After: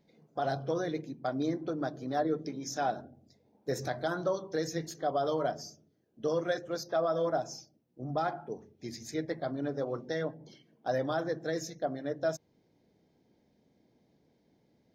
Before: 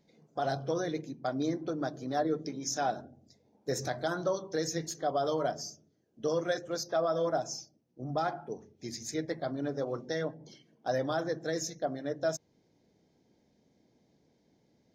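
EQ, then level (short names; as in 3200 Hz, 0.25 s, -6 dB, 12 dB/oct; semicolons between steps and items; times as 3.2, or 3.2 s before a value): bell 6800 Hz -6.5 dB 1 oct; 0.0 dB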